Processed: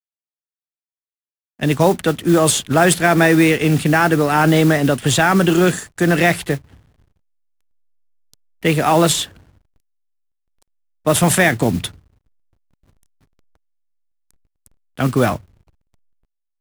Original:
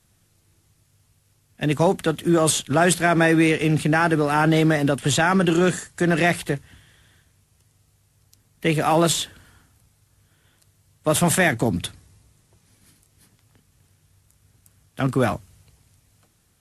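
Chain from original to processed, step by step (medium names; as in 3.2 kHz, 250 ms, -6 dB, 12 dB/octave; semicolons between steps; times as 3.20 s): modulation noise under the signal 20 dB; hysteresis with a dead band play -42 dBFS; trim +4.5 dB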